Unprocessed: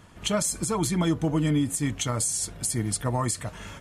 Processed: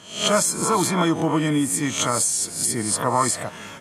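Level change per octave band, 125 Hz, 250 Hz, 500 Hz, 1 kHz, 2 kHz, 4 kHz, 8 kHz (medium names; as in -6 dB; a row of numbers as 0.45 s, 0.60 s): -1.0 dB, +3.5 dB, +7.0 dB, +10.5 dB, +8.5 dB, +7.5 dB, +6.5 dB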